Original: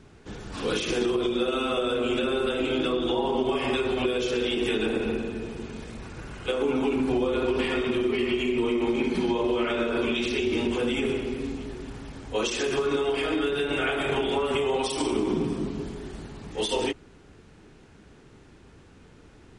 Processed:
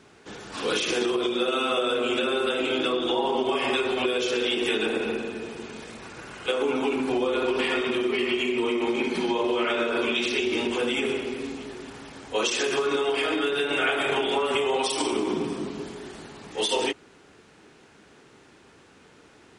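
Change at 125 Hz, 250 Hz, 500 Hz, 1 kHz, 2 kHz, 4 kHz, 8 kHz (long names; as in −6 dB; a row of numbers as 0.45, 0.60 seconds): −7.5, −1.5, +0.5, +3.0, +4.0, +4.0, +4.0 decibels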